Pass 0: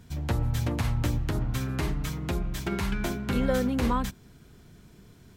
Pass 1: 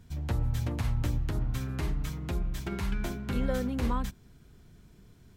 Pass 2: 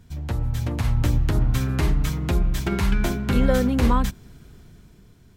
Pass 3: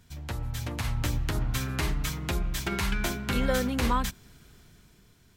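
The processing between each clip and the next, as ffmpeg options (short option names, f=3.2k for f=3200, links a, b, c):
-af "lowshelf=f=83:g=8,volume=-6dB"
-af "dynaudnorm=f=200:g=9:m=7dB,volume=3.5dB"
-af "tiltshelf=f=820:g=-5,volume=-4dB"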